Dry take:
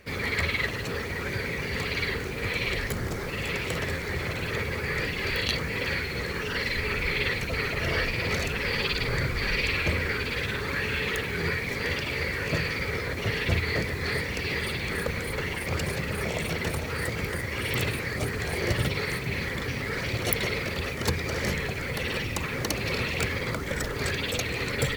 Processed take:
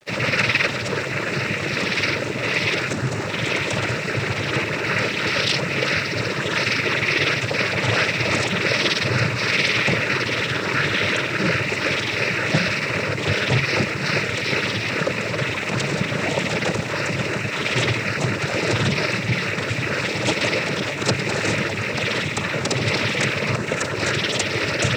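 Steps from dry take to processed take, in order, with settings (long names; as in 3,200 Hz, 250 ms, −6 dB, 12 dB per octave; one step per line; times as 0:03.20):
parametric band 280 Hz −6.5 dB 0.24 octaves
cochlear-implant simulation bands 12
dead-zone distortion −56 dBFS
level +9 dB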